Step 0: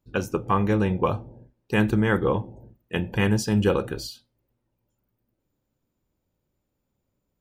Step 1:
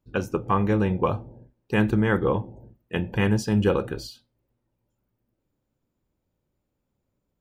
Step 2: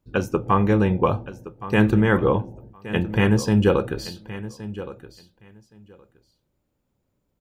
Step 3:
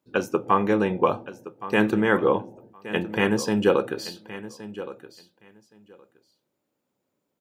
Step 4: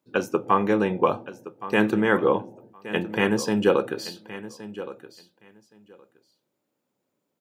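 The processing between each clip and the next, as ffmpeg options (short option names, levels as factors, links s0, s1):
-af "highshelf=f=3900:g=-6"
-af "aecho=1:1:1119|2238:0.178|0.0267,volume=1.5"
-af "highpass=250"
-af "highpass=90"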